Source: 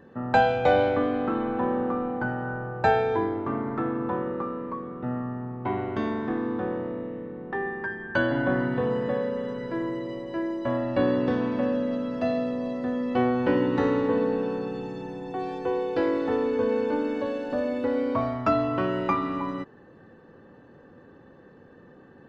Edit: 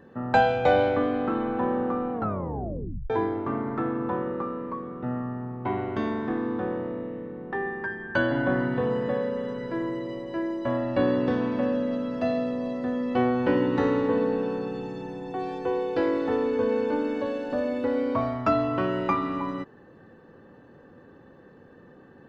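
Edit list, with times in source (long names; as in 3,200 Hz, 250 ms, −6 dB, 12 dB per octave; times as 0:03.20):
0:02.13: tape stop 0.97 s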